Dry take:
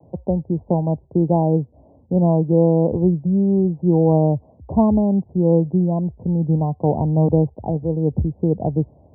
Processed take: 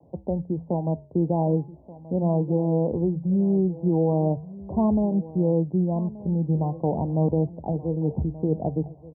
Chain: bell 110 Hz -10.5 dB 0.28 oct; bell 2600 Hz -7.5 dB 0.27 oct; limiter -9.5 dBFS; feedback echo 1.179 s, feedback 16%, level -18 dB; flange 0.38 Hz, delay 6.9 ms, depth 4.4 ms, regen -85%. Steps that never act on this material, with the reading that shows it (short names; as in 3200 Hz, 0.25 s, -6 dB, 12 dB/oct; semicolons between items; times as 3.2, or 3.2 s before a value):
bell 2600 Hz: input band ends at 960 Hz